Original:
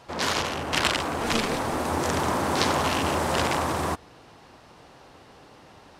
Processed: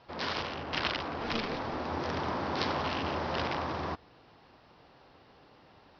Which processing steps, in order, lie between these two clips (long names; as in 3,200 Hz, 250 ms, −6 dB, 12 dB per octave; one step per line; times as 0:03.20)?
Butterworth low-pass 5,400 Hz 72 dB per octave
level −8 dB